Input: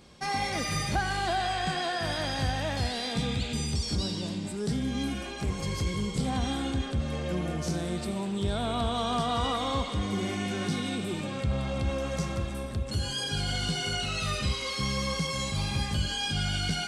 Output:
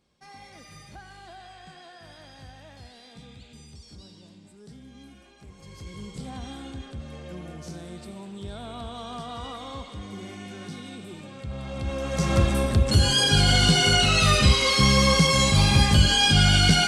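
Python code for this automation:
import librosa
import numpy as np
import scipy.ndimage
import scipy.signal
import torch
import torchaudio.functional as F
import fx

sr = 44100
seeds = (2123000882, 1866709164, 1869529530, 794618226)

y = fx.gain(x, sr, db=fx.line((5.52, -17.0), (6.03, -8.0), (11.38, -8.0), (12.12, 3.0), (12.37, 11.5)))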